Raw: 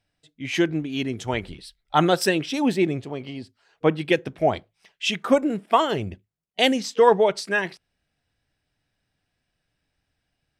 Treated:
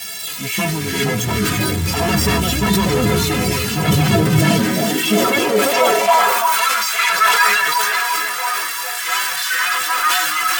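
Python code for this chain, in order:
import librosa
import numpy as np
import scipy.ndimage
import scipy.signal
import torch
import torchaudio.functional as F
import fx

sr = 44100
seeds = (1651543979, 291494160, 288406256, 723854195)

y = x + 0.5 * 10.0 ** (-19.5 / 20.0) * np.diff(np.sign(x), prepend=np.sign(x[:1]))
y = fx.high_shelf(y, sr, hz=4000.0, db=-7.5)
y = fx.echo_feedback(y, sr, ms=341, feedback_pct=57, wet_db=-9.0)
y = fx.fold_sine(y, sr, drive_db=17, ceiling_db=-3.5)
y = fx.peak_eq(y, sr, hz=78.0, db=7.0, octaves=2.7)
y = fx.stiff_resonator(y, sr, f0_hz=200.0, decay_s=0.21, stiffness=0.03)
y = fx.echo_pitch(y, sr, ms=270, semitones=-5, count=3, db_per_echo=-3.0)
y = fx.filter_sweep_highpass(y, sr, from_hz=73.0, to_hz=1300.0, start_s=3.71, end_s=6.7, q=2.5)
y = fx.sustainer(y, sr, db_per_s=25.0)
y = F.gain(torch.from_numpy(y), -1.5).numpy()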